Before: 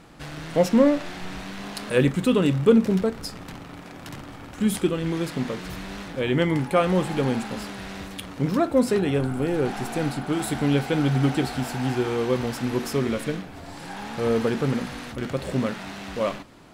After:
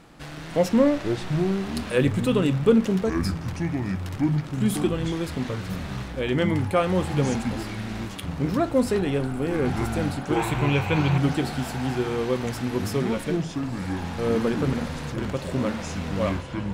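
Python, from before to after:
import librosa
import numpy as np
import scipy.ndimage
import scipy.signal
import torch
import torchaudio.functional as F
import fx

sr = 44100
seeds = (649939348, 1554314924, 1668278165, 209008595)

y = fx.echo_pitch(x, sr, ms=205, semitones=-7, count=3, db_per_echo=-6.0)
y = fx.graphic_eq_31(y, sr, hz=(160, 250, 1000, 2500, 5000, 10000), db=(7, -10, 11, 11, -6, -8), at=(10.36, 11.18))
y = y * 10.0 ** (-1.5 / 20.0)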